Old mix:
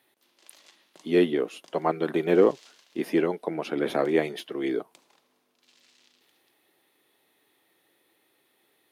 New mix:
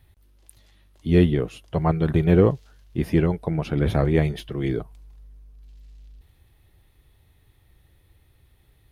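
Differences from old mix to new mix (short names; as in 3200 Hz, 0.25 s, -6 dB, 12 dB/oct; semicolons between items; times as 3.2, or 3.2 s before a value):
speech: remove HPF 270 Hz 24 dB/oct; background -10.5 dB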